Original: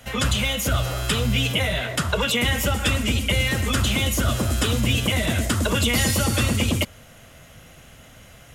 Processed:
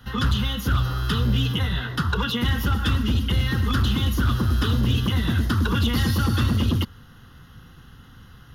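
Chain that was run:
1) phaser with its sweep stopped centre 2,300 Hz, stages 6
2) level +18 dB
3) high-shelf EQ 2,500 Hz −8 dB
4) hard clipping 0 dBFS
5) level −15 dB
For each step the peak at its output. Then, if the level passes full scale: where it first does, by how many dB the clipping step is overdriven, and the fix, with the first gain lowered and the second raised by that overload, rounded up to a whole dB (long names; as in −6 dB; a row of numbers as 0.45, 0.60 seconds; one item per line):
−10.0, +8.0, +6.5, 0.0, −15.0 dBFS
step 2, 6.5 dB
step 2 +11 dB, step 5 −8 dB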